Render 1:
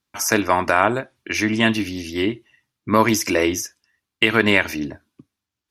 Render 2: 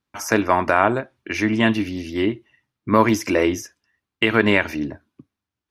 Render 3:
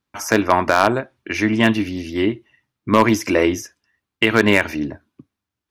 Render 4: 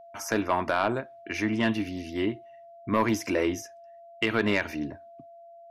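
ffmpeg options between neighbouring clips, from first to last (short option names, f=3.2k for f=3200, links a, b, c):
-af "highshelf=f=3.3k:g=-11,volume=1dB"
-af "aeval=exprs='0.596*(abs(mod(val(0)/0.596+3,4)-2)-1)':c=same,aeval=exprs='0.631*(cos(1*acos(clip(val(0)/0.631,-1,1)))-cos(1*PI/2))+0.0282*(cos(3*acos(clip(val(0)/0.631,-1,1)))-cos(3*PI/2))':c=same,volume=3dB"
-af "asoftclip=type=tanh:threshold=-5.5dB,aeval=exprs='val(0)+0.0126*sin(2*PI*680*n/s)':c=same,volume=-8.5dB"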